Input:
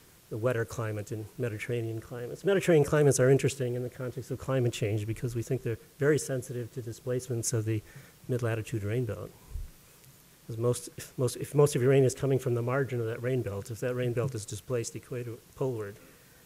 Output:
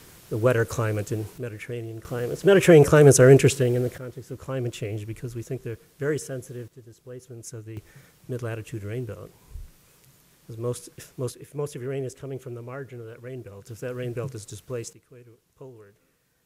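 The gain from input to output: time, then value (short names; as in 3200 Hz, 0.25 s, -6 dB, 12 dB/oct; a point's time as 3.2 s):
+8 dB
from 1.38 s -1 dB
from 2.05 s +9.5 dB
from 3.98 s -1 dB
from 6.68 s -9 dB
from 7.77 s -1 dB
from 11.32 s -7.5 dB
from 13.67 s -1 dB
from 14.93 s -12.5 dB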